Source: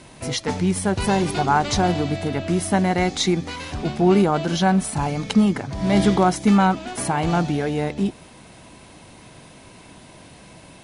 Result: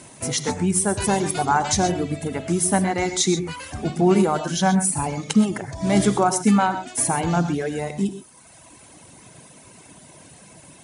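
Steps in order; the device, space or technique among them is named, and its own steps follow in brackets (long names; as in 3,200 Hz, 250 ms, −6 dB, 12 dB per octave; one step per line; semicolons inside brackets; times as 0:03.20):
budget condenser microphone (high-pass filter 75 Hz; high shelf with overshoot 5,600 Hz +7 dB, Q 1.5)
reverb reduction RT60 1.4 s
reverb whose tail is shaped and stops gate 150 ms rising, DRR 9.5 dB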